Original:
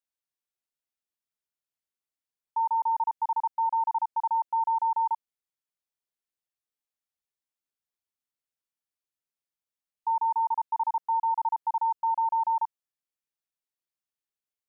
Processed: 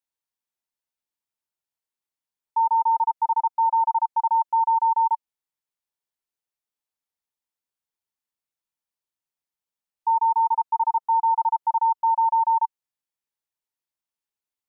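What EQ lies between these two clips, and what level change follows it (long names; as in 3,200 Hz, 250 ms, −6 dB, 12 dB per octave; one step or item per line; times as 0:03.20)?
parametric band 910 Hz +6 dB 0.27 octaves
0.0 dB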